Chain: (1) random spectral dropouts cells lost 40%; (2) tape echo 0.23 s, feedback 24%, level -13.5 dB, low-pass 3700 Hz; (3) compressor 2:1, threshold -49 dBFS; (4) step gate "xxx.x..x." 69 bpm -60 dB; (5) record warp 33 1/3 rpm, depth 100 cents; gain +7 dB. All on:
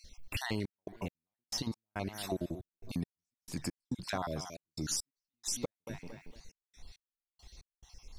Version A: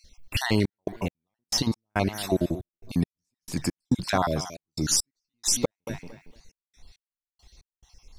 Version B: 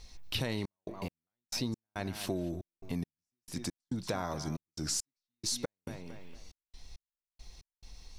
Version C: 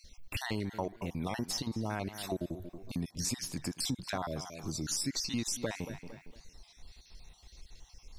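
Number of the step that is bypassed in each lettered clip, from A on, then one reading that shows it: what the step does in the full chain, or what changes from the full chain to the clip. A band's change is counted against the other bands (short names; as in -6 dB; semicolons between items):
3, mean gain reduction 8.5 dB; 1, 2 kHz band -2.0 dB; 4, crest factor change -3.0 dB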